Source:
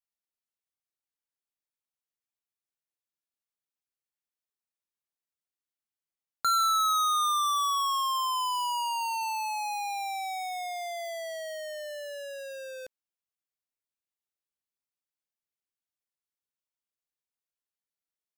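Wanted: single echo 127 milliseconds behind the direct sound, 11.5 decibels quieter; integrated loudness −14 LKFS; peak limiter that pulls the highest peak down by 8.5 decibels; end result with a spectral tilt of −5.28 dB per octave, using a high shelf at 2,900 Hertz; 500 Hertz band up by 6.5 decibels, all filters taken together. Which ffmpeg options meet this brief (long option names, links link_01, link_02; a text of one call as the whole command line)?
ffmpeg -i in.wav -af "equalizer=frequency=500:width_type=o:gain=8.5,highshelf=frequency=2900:gain=6,alimiter=level_in=2.5dB:limit=-24dB:level=0:latency=1,volume=-2.5dB,aecho=1:1:127:0.266,volume=15dB" out.wav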